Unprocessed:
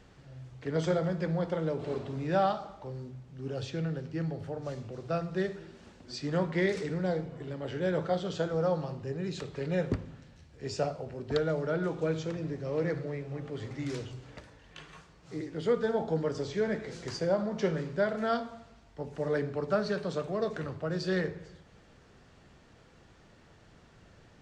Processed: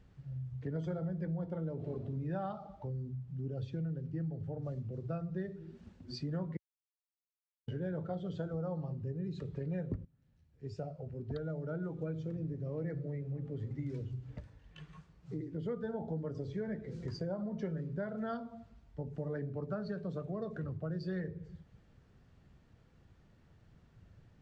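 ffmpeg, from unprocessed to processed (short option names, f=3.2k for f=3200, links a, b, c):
-filter_complex "[0:a]asplit=4[a][b][c][d];[a]atrim=end=6.57,asetpts=PTS-STARTPTS,afade=t=out:st=6.566:d=0.004:c=hsin[e];[b]atrim=start=6.57:end=7.68,asetpts=PTS-STARTPTS,volume=0[f];[c]atrim=start=7.68:end=10.05,asetpts=PTS-STARTPTS,afade=t=in:d=0.004:c=hsin,afade=t=out:st=2.366:d=0.004:c=hsin:silence=0.188365[g];[d]atrim=start=10.05,asetpts=PTS-STARTPTS,afade=t=in:d=2.37:silence=0.188365[h];[e][f][g][h]concat=n=4:v=0:a=1,afftdn=nr=12:nf=-39,bass=f=250:g=10,treble=f=4k:g=-3,acompressor=threshold=-39dB:ratio=3"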